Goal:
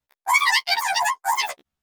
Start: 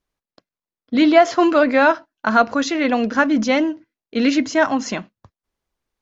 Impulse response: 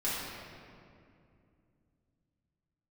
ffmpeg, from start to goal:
-af "afftfilt=real='re':imag='-im':win_size=4096:overlap=0.75,asetrate=145089,aresample=44100"

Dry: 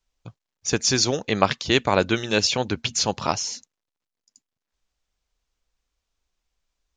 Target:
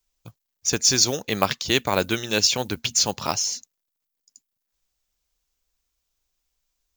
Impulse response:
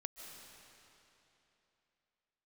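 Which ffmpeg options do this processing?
-af "acrusher=bits=8:mode=log:mix=0:aa=0.000001,aemphasis=mode=production:type=50fm,volume=-2.5dB"

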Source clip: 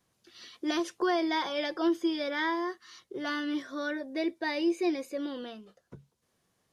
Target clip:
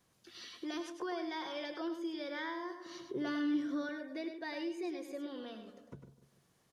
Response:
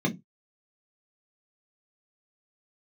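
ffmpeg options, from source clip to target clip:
-filter_complex "[0:a]asplit=2[link_01][link_02];[link_02]adelay=146,lowpass=frequency=2000:poles=1,volume=-16dB,asplit=2[link_03][link_04];[link_04]adelay=146,lowpass=frequency=2000:poles=1,volume=0.51,asplit=2[link_05][link_06];[link_06]adelay=146,lowpass=frequency=2000:poles=1,volume=0.51,asplit=2[link_07][link_08];[link_08]adelay=146,lowpass=frequency=2000:poles=1,volume=0.51,asplit=2[link_09][link_10];[link_10]adelay=146,lowpass=frequency=2000:poles=1,volume=0.51[link_11];[link_03][link_05][link_07][link_09][link_11]amix=inputs=5:normalize=0[link_12];[link_01][link_12]amix=inputs=2:normalize=0,acompressor=threshold=-49dB:ratio=2,asettb=1/sr,asplit=3[link_13][link_14][link_15];[link_13]atrim=end=2.864[link_16];[link_14]atrim=start=2.86:end=3.89,asetpts=PTS-STARTPTS,afade=type=in:duration=0.004:curve=qsin,afade=type=out:start_time=1.026:duration=0.004:curve=qsin,equalizer=frequency=160:width_type=o:width=2.1:gain=13[link_17];[link_15]atrim=start=3.886[link_18];[link_16][link_17]acrossfade=duration=0.004:curve1=hsin:curve2=qsin[link_19];[link_19][link_18]acrossfade=duration=0.004:curve1=qsin:curve2=hsin,asplit=2[link_20][link_21];[link_21]aecho=0:1:102:0.398[link_22];[link_20][link_22]amix=inputs=2:normalize=0,volume=1dB"

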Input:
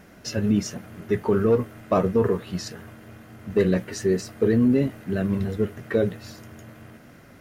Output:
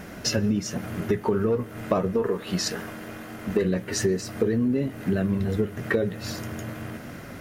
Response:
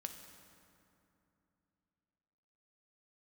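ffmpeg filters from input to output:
-filter_complex "[0:a]asettb=1/sr,asplit=3[link_01][link_02][link_03];[link_01]atrim=end=2.144[link_04];[link_02]atrim=start=2.14:end=3.62,asetpts=PTS-STARTPTS,afade=type=in:duration=0.004:curve=qsin,afade=type=out:start_time=1.476:duration=0.004:curve=qsin,equalizer=frequency=100:width=0.85:gain=-10.5[link_05];[link_03]atrim=start=3.616[link_06];[link_04][link_05]acrossfade=duration=0.004:curve1=hsin:curve2=qsin[link_07];[link_07][link_06]acrossfade=duration=0.004:curve1=qsin:curve2=hsin,acompressor=threshold=-31dB:ratio=6,asplit=2[link_08][link_09];[1:a]atrim=start_sample=2205[link_10];[link_09][link_10]afir=irnorm=-1:irlink=0,volume=-14dB[link_11];[link_08][link_11]amix=inputs=2:normalize=0,volume=8.5dB"

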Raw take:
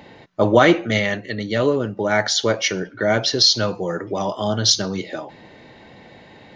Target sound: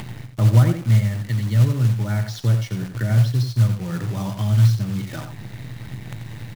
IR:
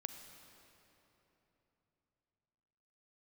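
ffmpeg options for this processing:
-filter_complex "[0:a]firequalizer=gain_entry='entry(110,0);entry(420,-20);entry(1300,-11)':delay=0.05:min_phase=1,acrossover=split=1100[link_01][link_02];[link_02]acompressor=threshold=-41dB:ratio=5[link_03];[link_01][link_03]amix=inputs=2:normalize=0,acrusher=bits=8:dc=4:mix=0:aa=0.000001,equalizer=frequency=120:width_type=o:width=0.49:gain=15,acompressor=mode=upward:threshold=-21dB:ratio=2.5,asplit=2[link_04][link_05];[link_05]adelay=87.46,volume=-8dB,highshelf=frequency=4000:gain=-1.97[link_06];[link_04][link_06]amix=inputs=2:normalize=0,acrusher=bits=6:mode=log:mix=0:aa=0.000001,volume=1.5dB"

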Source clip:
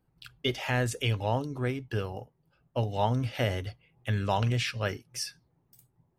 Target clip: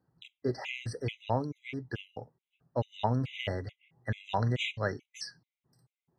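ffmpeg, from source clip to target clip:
ffmpeg -i in.wav -af "highpass=100,lowpass=4900,afftfilt=real='re*gt(sin(2*PI*2.3*pts/sr)*(1-2*mod(floor(b*sr/1024/2000),2)),0)':imag='im*gt(sin(2*PI*2.3*pts/sr)*(1-2*mod(floor(b*sr/1024/2000),2)),0)':win_size=1024:overlap=0.75" out.wav

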